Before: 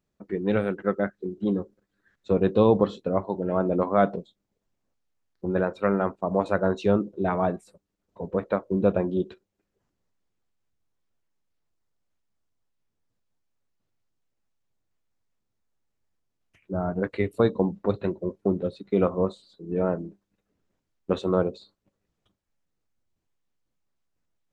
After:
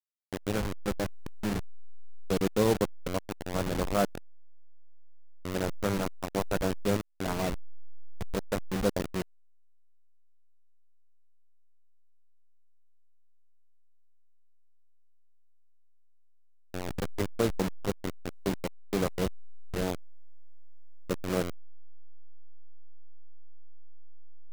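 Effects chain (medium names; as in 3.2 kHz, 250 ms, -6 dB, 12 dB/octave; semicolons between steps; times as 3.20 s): send-on-delta sampling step -19.5 dBFS; trim -5.5 dB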